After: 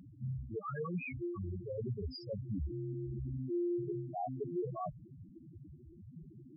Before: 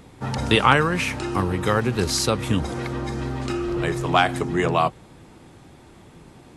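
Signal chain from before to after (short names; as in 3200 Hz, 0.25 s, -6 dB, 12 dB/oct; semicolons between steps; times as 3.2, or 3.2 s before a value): reverse; compressor 6:1, threshold -31 dBFS, peak gain reduction 19 dB; reverse; loudest bins only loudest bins 2; gain +1.5 dB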